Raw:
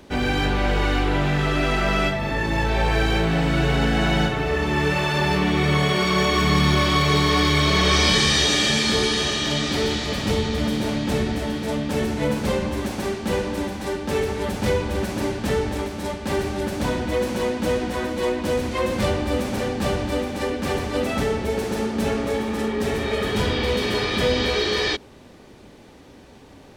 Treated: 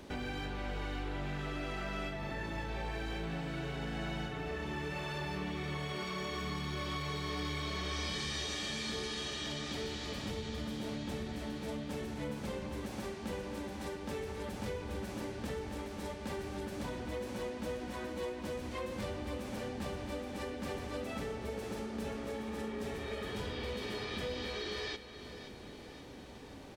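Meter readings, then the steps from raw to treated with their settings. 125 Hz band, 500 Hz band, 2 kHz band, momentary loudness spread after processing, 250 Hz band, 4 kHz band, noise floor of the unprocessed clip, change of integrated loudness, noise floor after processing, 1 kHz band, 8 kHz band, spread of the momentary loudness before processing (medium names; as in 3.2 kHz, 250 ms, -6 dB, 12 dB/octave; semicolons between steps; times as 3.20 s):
-17.5 dB, -17.0 dB, -18.0 dB, 4 LU, -17.0 dB, -18.0 dB, -46 dBFS, -17.5 dB, -49 dBFS, -17.5 dB, -18.0 dB, 8 LU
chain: compression 3:1, threshold -37 dBFS, peak gain reduction 16.5 dB; feedback delay 531 ms, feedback 57%, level -12.5 dB; trim -4.5 dB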